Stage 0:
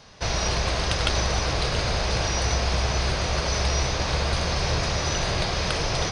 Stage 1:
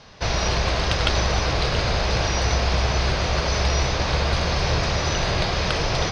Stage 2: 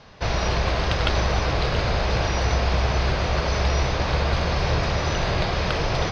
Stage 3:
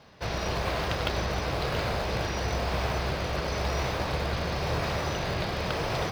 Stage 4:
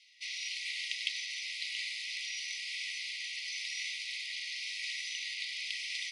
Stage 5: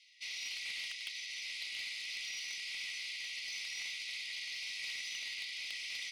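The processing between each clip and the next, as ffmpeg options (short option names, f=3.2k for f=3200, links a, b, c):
-af "lowpass=5.4k,volume=3dB"
-af "aemphasis=mode=reproduction:type=50kf"
-filter_complex "[0:a]highpass=f=110:p=1,asplit=2[a][b];[b]acrusher=samples=20:mix=1:aa=0.000001:lfo=1:lforange=32:lforate=0.97,volume=-9.5dB[c];[a][c]amix=inputs=2:normalize=0,volume=-6.5dB"
-af "afftfilt=real='re*between(b*sr/4096,1900,11000)':imag='im*between(b*sr/4096,1900,11000)':win_size=4096:overlap=0.75"
-filter_complex "[0:a]asplit=2[a][b];[b]alimiter=level_in=0.5dB:limit=-24dB:level=0:latency=1:release=451,volume=-0.5dB,volume=2dB[c];[a][c]amix=inputs=2:normalize=0,asoftclip=type=tanh:threshold=-24.5dB,volume=-8.5dB"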